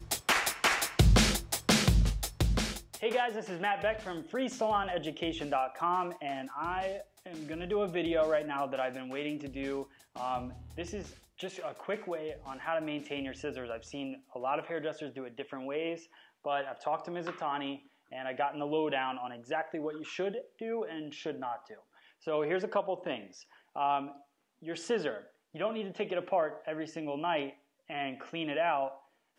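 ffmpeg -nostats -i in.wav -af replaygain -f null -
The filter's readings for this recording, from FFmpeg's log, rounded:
track_gain = +13.4 dB
track_peak = 0.163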